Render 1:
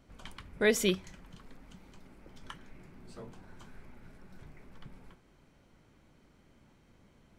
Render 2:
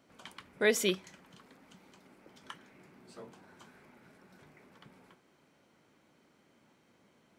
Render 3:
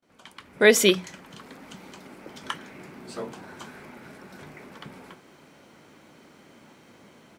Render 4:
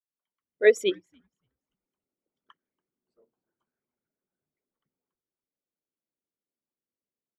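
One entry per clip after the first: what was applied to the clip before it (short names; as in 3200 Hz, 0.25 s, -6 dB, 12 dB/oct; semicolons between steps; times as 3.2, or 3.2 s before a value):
Bessel high-pass 250 Hz, order 2
gate with hold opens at -59 dBFS; notches 60/120/180 Hz; AGC gain up to 14.5 dB
formant sharpening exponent 2; frequency-shifting echo 0.284 s, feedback 37%, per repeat -120 Hz, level -14 dB; upward expander 2.5:1, over -43 dBFS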